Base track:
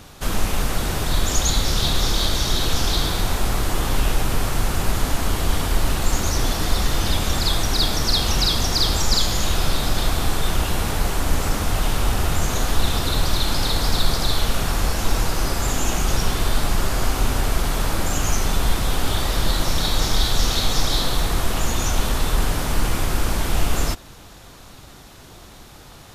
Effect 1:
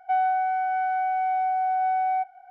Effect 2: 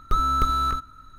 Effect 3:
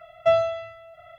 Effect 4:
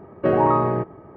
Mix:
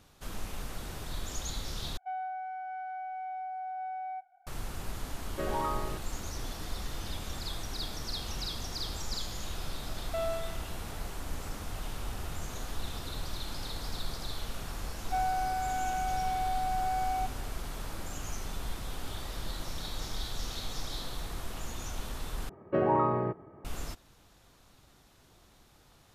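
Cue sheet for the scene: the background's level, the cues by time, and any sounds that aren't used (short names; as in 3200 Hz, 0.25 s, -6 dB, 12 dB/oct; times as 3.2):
base track -17.5 dB
1.97 replace with 1 -14 dB
5.14 add 4 -12.5 dB + tilt shelf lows -6.5 dB, about 1200 Hz
9.88 add 3 -9 dB + limiter -18 dBFS
15.03 add 1 -8 dB
22.49 replace with 4 -8.5 dB
not used: 2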